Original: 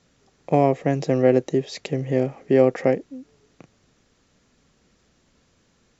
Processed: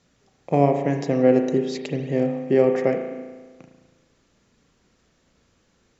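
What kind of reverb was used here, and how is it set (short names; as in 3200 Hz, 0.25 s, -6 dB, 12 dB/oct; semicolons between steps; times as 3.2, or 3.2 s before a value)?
spring tank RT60 1.4 s, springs 35 ms, chirp 65 ms, DRR 4.5 dB; gain -2 dB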